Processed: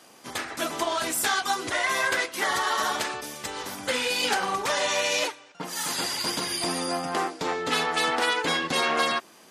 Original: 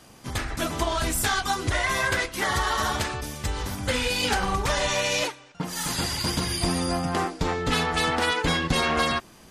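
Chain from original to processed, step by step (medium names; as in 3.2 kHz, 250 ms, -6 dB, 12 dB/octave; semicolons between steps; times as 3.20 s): high-pass 310 Hz 12 dB/octave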